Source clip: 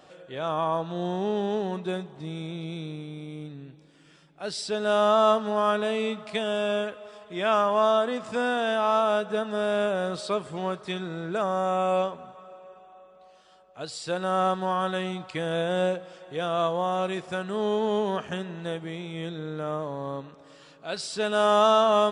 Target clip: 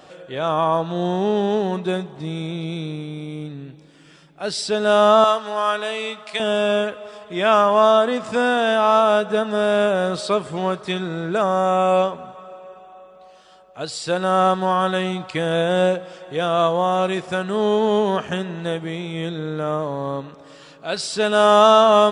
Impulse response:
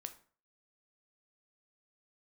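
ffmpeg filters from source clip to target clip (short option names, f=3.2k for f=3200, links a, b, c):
-filter_complex "[0:a]asettb=1/sr,asplit=3[a][b][c];[a]atrim=end=5.244[d];[b]atrim=start=5.24:end=6.4,asetpts=PTS-STARTPTS,afade=t=in:d=0.004:c=qsin,afade=t=out:st=1.156:d=0.004:c=qsin,highpass=f=1.1k:p=1[e];[c]atrim=start=6.396[f];[d][e]acrossfade=d=0.004:c1=hsin:c2=qsin[g];[g][f]acrossfade=d=0.004:c1=qsin:c2=hsin,volume=7.5dB"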